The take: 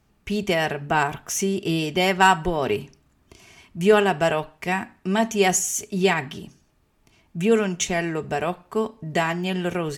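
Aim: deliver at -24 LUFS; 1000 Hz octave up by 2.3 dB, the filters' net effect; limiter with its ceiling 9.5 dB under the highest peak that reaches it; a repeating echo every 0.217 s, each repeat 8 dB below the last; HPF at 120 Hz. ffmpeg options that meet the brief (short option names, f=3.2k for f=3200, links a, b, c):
-af "highpass=120,equalizer=f=1k:t=o:g=3,alimiter=limit=-10.5dB:level=0:latency=1,aecho=1:1:217|434|651|868|1085:0.398|0.159|0.0637|0.0255|0.0102,volume=-0.5dB"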